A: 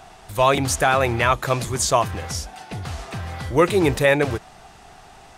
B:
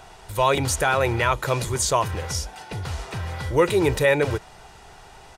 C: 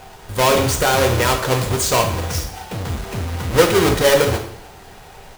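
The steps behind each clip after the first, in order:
comb 2.1 ms, depth 38%; in parallel at -2 dB: limiter -15.5 dBFS, peak gain reduction 12 dB; on the sum: gain -5.5 dB
half-waves squared off; two-slope reverb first 0.62 s, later 2.4 s, from -26 dB, DRR 2.5 dB; gain -1 dB

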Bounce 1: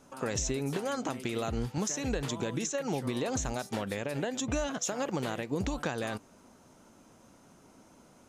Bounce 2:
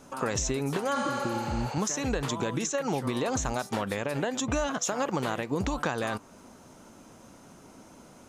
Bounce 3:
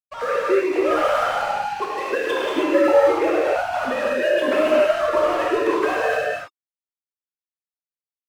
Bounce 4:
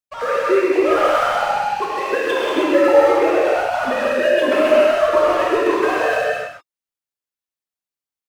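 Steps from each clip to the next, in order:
spectral repair 0.98–1.72, 390–9800 Hz both; dynamic EQ 1100 Hz, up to +6 dB, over -51 dBFS, Q 1.5; in parallel at +1 dB: compressor, threshold -40 dBFS, peak gain reduction 13.5 dB
sine-wave speech; crossover distortion -42.5 dBFS; non-linear reverb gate 0.34 s flat, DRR -6.5 dB; gain +4 dB
echo 0.129 s -6.5 dB; gain +2.5 dB

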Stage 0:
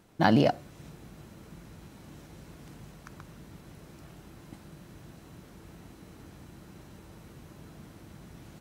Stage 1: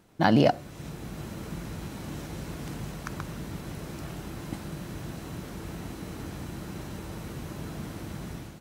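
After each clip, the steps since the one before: AGC gain up to 11.5 dB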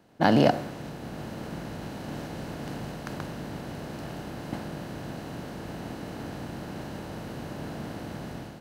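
per-bin compression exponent 0.6; three-band expander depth 70%; gain -7.5 dB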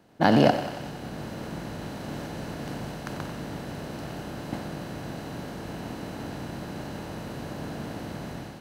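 thinning echo 92 ms, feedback 69%, high-pass 480 Hz, level -10.5 dB; gain +1 dB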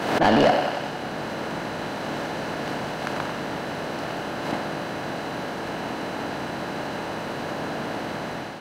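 overdrive pedal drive 22 dB, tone 2600 Hz, clips at -5 dBFS; backwards sustainer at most 53 dB/s; gain -3.5 dB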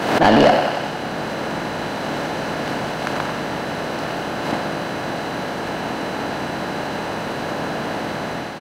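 echo 86 ms -14 dB; gain +5 dB

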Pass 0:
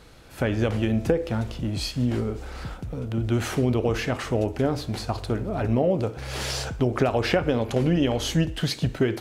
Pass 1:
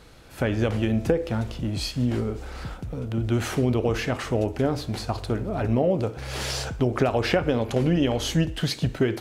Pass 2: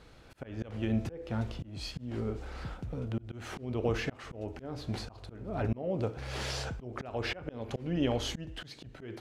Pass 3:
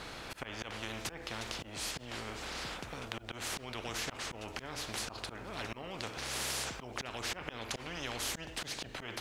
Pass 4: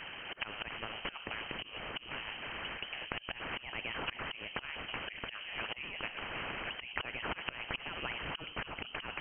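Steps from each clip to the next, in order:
nothing audible
high shelf 8500 Hz -12 dB; auto swell 0.311 s; gain -5.5 dB
spectral compressor 4:1; gain +1 dB
harmonic-percussive split harmonic -12 dB; inverted band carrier 3100 Hz; gain +4.5 dB

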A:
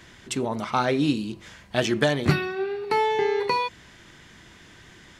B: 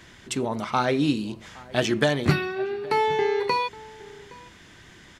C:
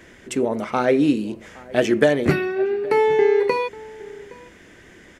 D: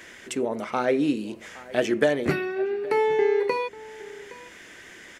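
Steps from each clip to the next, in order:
outdoor echo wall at 140 m, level -21 dB
ten-band EQ 125 Hz -5 dB, 250 Hz +3 dB, 500 Hz +8 dB, 1000 Hz -5 dB, 2000 Hz +4 dB, 4000 Hz -8 dB; gain +1.5 dB
low shelf 180 Hz -6.5 dB; mismatched tape noise reduction encoder only; gain -4 dB

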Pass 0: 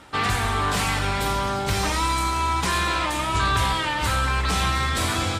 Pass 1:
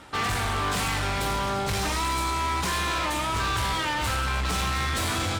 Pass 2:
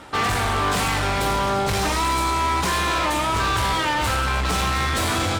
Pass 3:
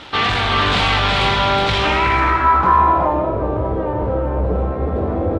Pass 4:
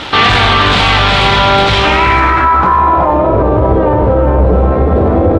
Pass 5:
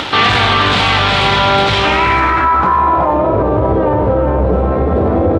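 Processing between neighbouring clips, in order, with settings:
hard clip -24 dBFS, distortion -9 dB
bell 550 Hz +3.5 dB 2.5 oct; gain +3.5 dB
bit-crush 7-bit; echo 0.369 s -3.5 dB; low-pass sweep 3500 Hz -> 520 Hz, 1.72–3.39; gain +2.5 dB
maximiser +15 dB; gain -1 dB
HPF 69 Hz; upward compressor, threshold -13 dBFS; gain -2.5 dB

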